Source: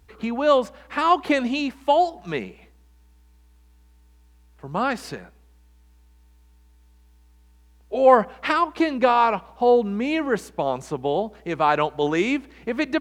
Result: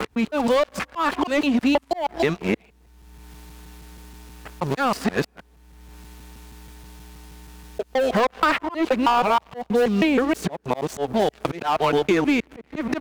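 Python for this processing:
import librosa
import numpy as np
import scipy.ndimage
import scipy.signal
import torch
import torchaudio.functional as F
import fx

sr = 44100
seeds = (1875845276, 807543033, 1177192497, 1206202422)

y = fx.local_reverse(x, sr, ms=159.0)
y = fx.low_shelf(y, sr, hz=66.0, db=3.5)
y = fx.leveller(y, sr, passes=3)
y = fx.auto_swell(y, sr, attack_ms=482.0)
y = fx.band_squash(y, sr, depth_pct=100)
y = F.gain(torch.from_numpy(y), -4.5).numpy()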